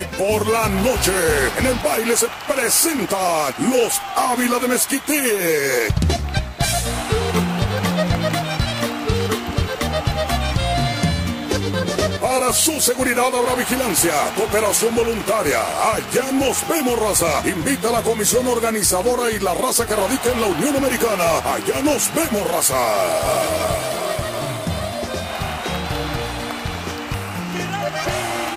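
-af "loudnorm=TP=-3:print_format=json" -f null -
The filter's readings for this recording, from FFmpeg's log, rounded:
"input_i" : "-19.2",
"input_tp" : "-5.8",
"input_lra" : "6.6",
"input_thresh" : "-29.2",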